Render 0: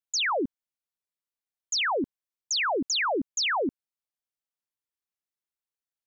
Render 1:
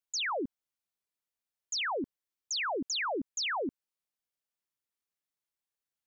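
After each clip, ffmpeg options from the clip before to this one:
ffmpeg -i in.wav -af "alimiter=level_in=5.5dB:limit=-24dB:level=0:latency=1,volume=-5.5dB" out.wav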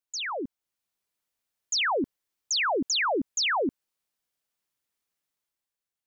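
ffmpeg -i in.wav -af "dynaudnorm=framelen=160:gausssize=9:maxgain=7dB" out.wav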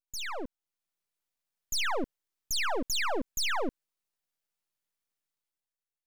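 ffmpeg -i in.wav -af "aeval=exprs='max(val(0),0)':channel_layout=same" out.wav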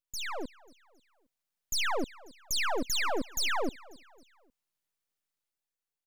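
ffmpeg -i in.wav -af "aecho=1:1:270|540|810:0.0794|0.035|0.0154" out.wav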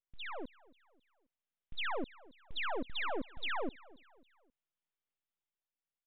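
ffmpeg -i in.wav -af "aresample=8000,aresample=44100,volume=-6dB" out.wav

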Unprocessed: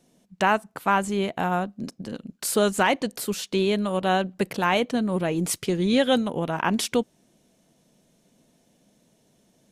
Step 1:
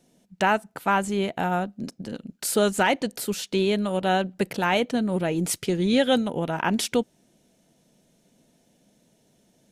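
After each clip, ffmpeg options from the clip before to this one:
ffmpeg -i in.wav -af "bandreject=frequency=1100:width=8" out.wav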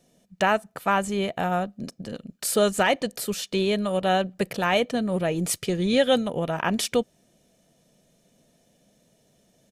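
ffmpeg -i in.wav -af "aecho=1:1:1.7:0.32" out.wav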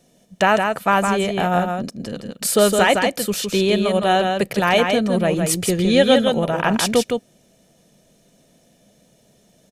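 ffmpeg -i in.wav -af "aecho=1:1:162:0.562,volume=5.5dB" out.wav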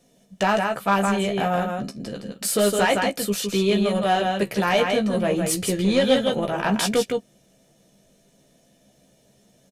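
ffmpeg -i in.wav -filter_complex "[0:a]acontrast=83,flanger=delay=4.2:depth=9:regen=-66:speed=0.29:shape=sinusoidal,asplit=2[link_01][link_02];[link_02]adelay=15,volume=-6dB[link_03];[link_01][link_03]amix=inputs=2:normalize=0,volume=-6.5dB" out.wav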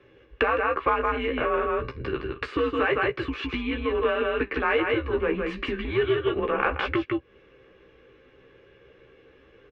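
ffmpeg -i in.wav -af "acompressor=threshold=-29dB:ratio=10,highpass=330,equalizer=frequency=350:width_type=q:width=4:gain=-4,equalizer=frequency=570:width_type=q:width=4:gain=6,equalizer=frequency=810:width_type=q:width=4:gain=-6,equalizer=frequency=1300:width_type=q:width=4:gain=8,equalizer=frequency=1900:width_type=q:width=4:gain=5,equalizer=frequency=2700:width_type=q:width=4:gain=5,lowpass=frequency=2800:width=0.5412,lowpass=frequency=2800:width=1.3066,afreqshift=-140,volume=7dB" out.wav

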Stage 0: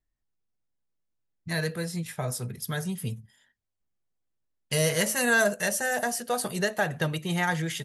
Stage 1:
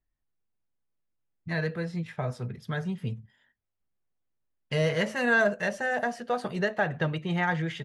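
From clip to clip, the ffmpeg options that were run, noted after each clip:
ffmpeg -i in.wav -af "lowpass=2700" out.wav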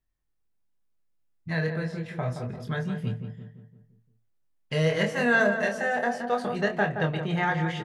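ffmpeg -i in.wav -filter_complex "[0:a]asplit=2[link_01][link_02];[link_02]adelay=25,volume=-5.5dB[link_03];[link_01][link_03]amix=inputs=2:normalize=0,asplit=2[link_04][link_05];[link_05]adelay=172,lowpass=frequency=1600:poles=1,volume=-7dB,asplit=2[link_06][link_07];[link_07]adelay=172,lowpass=frequency=1600:poles=1,volume=0.5,asplit=2[link_08][link_09];[link_09]adelay=172,lowpass=frequency=1600:poles=1,volume=0.5,asplit=2[link_10][link_11];[link_11]adelay=172,lowpass=frequency=1600:poles=1,volume=0.5,asplit=2[link_12][link_13];[link_13]adelay=172,lowpass=frequency=1600:poles=1,volume=0.5,asplit=2[link_14][link_15];[link_15]adelay=172,lowpass=frequency=1600:poles=1,volume=0.5[link_16];[link_06][link_08][link_10][link_12][link_14][link_16]amix=inputs=6:normalize=0[link_17];[link_04][link_17]amix=inputs=2:normalize=0" out.wav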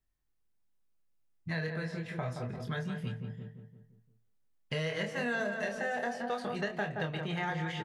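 ffmpeg -i in.wav -filter_complex "[0:a]asplit=2[link_01][link_02];[link_02]adelay=360,highpass=300,lowpass=3400,asoftclip=type=hard:threshold=-21dB,volume=-21dB[link_03];[link_01][link_03]amix=inputs=2:normalize=0,acrossover=split=920|2200|4600[link_04][link_05][link_06][link_07];[link_04]acompressor=threshold=-33dB:ratio=4[link_08];[link_05]acompressor=threshold=-41dB:ratio=4[link_09];[link_06]acompressor=threshold=-41dB:ratio=4[link_10];[link_07]acompressor=threshold=-56dB:ratio=4[link_11];[link_08][link_09][link_10][link_11]amix=inputs=4:normalize=0,volume=-1.5dB" out.wav

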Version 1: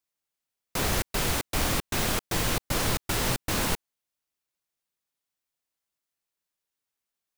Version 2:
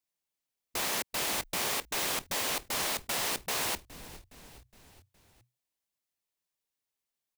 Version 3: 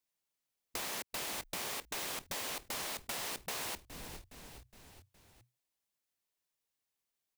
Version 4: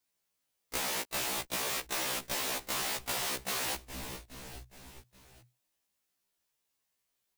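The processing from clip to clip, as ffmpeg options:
ffmpeg -i in.wav -filter_complex "[0:a]equalizer=frequency=1400:width_type=o:width=0.47:gain=-4.5,asplit=5[link_01][link_02][link_03][link_04][link_05];[link_02]adelay=415,afreqshift=-31,volume=-19dB[link_06];[link_03]adelay=830,afreqshift=-62,volume=-24.4dB[link_07];[link_04]adelay=1245,afreqshift=-93,volume=-29.7dB[link_08];[link_05]adelay=1660,afreqshift=-124,volume=-35.1dB[link_09];[link_01][link_06][link_07][link_08][link_09]amix=inputs=5:normalize=0,afftfilt=real='re*lt(hypot(re,im),0.112)':imag='im*lt(hypot(re,im),0.112)':win_size=1024:overlap=0.75,volume=-2dB" out.wav
ffmpeg -i in.wav -af "acompressor=threshold=-38dB:ratio=4" out.wav
ffmpeg -i in.wav -af "afftfilt=real='re*1.73*eq(mod(b,3),0)':imag='im*1.73*eq(mod(b,3),0)':win_size=2048:overlap=0.75,volume=8dB" out.wav

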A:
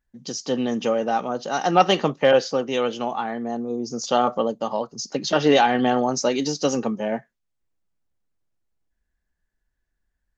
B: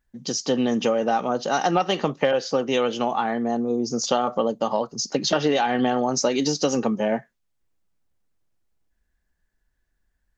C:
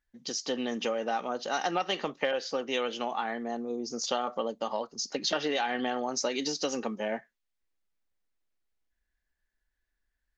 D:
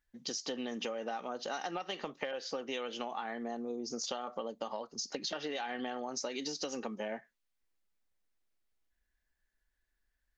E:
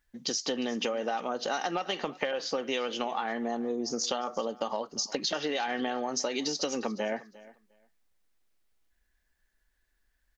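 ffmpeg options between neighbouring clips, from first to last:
ffmpeg -i in.wav -af "acompressor=threshold=-21dB:ratio=10,volume=4dB" out.wav
ffmpeg -i in.wav -af "equalizer=frequency=125:width_type=o:width=1:gain=-12,equalizer=frequency=2000:width_type=o:width=1:gain=5,equalizer=frequency=4000:width_type=o:width=1:gain=4,volume=-9dB" out.wav
ffmpeg -i in.wav -af "acompressor=threshold=-35dB:ratio=6" out.wav
ffmpeg -i in.wav -af "aecho=1:1:353|706:0.1|0.017,volume=7dB" out.wav

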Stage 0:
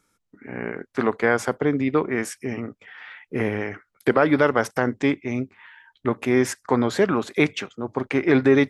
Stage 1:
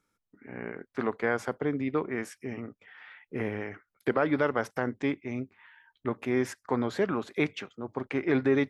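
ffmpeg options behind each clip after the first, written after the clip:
ffmpeg -i in.wav -af "equalizer=frequency=8500:width_type=o:width=1.4:gain=-6,volume=-8dB" out.wav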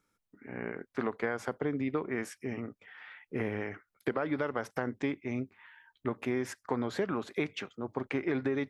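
ffmpeg -i in.wav -af "acompressor=threshold=-27dB:ratio=10" out.wav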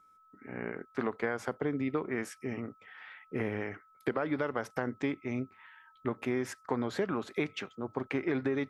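ffmpeg -i in.wav -af "aeval=exprs='val(0)+0.001*sin(2*PI*1300*n/s)':channel_layout=same" out.wav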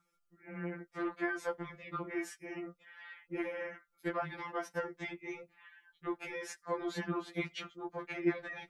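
ffmpeg -i in.wav -af "afftfilt=real='re*2.83*eq(mod(b,8),0)':imag='im*2.83*eq(mod(b,8),0)':win_size=2048:overlap=0.75" out.wav

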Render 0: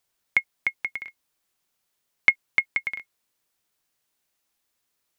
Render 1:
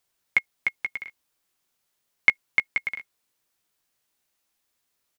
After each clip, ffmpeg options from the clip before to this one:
ffmpeg -i in.wav -filter_complex "[0:a]asplit=2[link_01][link_02];[link_02]adelay=16,volume=-11dB[link_03];[link_01][link_03]amix=inputs=2:normalize=0" out.wav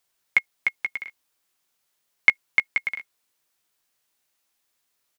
ffmpeg -i in.wav -af "lowshelf=frequency=390:gain=-5,volume=2dB" out.wav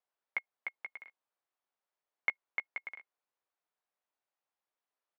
ffmpeg -i in.wav -af "bandpass=frequency=740:width_type=q:width=0.96:csg=0,volume=-7.5dB" out.wav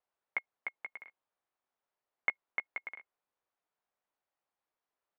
ffmpeg -i in.wav -af "aemphasis=mode=reproduction:type=75fm,volume=2.5dB" out.wav

